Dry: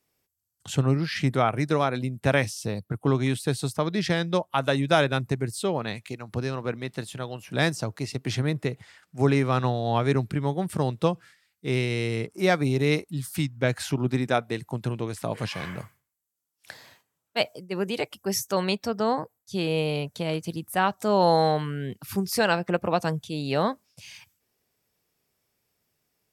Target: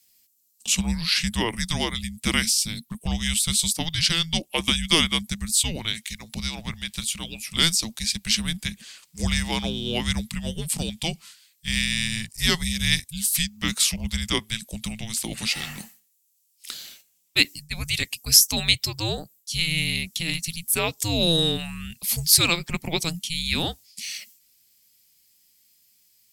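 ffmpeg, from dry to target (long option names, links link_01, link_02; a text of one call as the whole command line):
ffmpeg -i in.wav -af "aexciter=amount=7.1:drive=5:freq=2500,afreqshift=-330,volume=-4dB" out.wav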